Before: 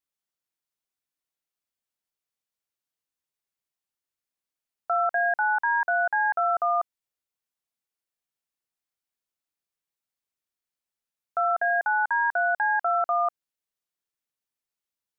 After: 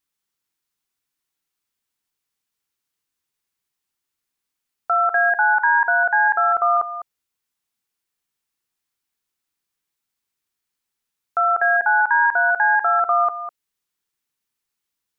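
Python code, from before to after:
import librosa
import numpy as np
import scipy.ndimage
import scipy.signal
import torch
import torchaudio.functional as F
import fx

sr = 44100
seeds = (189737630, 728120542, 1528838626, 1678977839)

y = fx.peak_eq(x, sr, hz=610.0, db=-9.0, octaves=0.45)
y = y + 10.0 ** (-12.0 / 20.0) * np.pad(y, (int(203 * sr / 1000.0), 0))[:len(y)]
y = F.gain(torch.from_numpy(y), 8.0).numpy()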